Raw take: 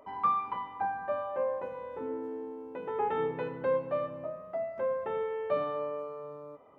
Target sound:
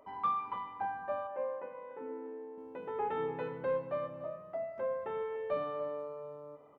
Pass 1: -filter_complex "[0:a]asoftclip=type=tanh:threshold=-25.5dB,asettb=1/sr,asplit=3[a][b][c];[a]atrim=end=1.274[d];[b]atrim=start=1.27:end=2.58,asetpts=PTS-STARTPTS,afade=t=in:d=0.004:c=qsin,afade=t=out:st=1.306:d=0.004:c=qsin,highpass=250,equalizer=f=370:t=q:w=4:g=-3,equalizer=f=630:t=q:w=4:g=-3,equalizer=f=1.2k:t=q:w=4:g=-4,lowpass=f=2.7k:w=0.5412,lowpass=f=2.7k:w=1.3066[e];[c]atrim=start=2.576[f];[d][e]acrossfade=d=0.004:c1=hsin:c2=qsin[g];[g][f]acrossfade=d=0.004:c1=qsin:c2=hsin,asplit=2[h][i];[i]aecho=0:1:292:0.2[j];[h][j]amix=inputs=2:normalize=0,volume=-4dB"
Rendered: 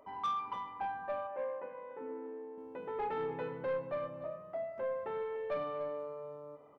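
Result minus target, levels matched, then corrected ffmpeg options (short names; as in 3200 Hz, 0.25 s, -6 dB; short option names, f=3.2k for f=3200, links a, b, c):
soft clip: distortion +15 dB
-filter_complex "[0:a]asoftclip=type=tanh:threshold=-16dB,asettb=1/sr,asplit=3[a][b][c];[a]atrim=end=1.274[d];[b]atrim=start=1.27:end=2.58,asetpts=PTS-STARTPTS,afade=t=in:d=0.004:c=qsin,afade=t=out:st=1.306:d=0.004:c=qsin,highpass=250,equalizer=f=370:t=q:w=4:g=-3,equalizer=f=630:t=q:w=4:g=-3,equalizer=f=1.2k:t=q:w=4:g=-4,lowpass=f=2.7k:w=0.5412,lowpass=f=2.7k:w=1.3066[e];[c]atrim=start=2.576[f];[d][e]acrossfade=d=0.004:c1=hsin:c2=qsin[g];[g][f]acrossfade=d=0.004:c1=qsin:c2=hsin,asplit=2[h][i];[i]aecho=0:1:292:0.2[j];[h][j]amix=inputs=2:normalize=0,volume=-4dB"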